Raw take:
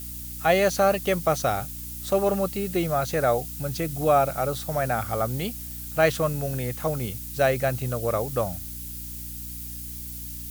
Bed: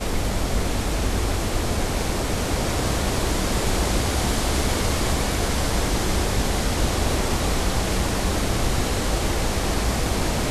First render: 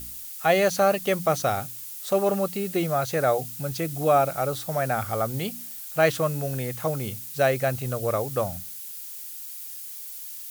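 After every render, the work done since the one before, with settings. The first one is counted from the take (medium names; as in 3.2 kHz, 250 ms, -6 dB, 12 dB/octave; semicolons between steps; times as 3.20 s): de-hum 60 Hz, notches 5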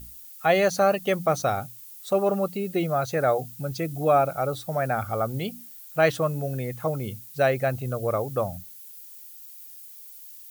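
noise reduction 10 dB, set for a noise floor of -38 dBFS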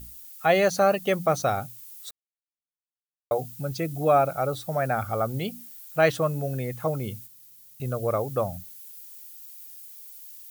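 2.11–3.31 s: mute; 7.27–7.80 s: room tone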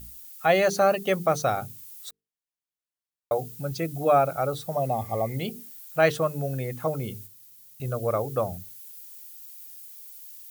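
4.75–5.33 s: spectral replace 1.2–2.5 kHz both; hum notches 50/100/150/200/250/300/350/400/450 Hz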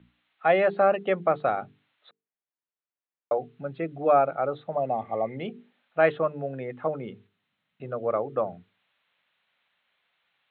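steep low-pass 4 kHz 96 dB/octave; three-band isolator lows -23 dB, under 170 Hz, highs -22 dB, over 2.8 kHz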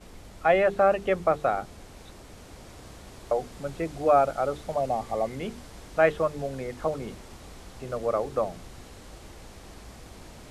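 add bed -23 dB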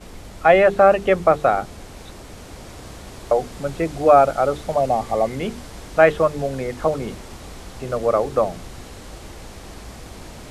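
trim +8 dB; peak limiter -2 dBFS, peak gain reduction 1.5 dB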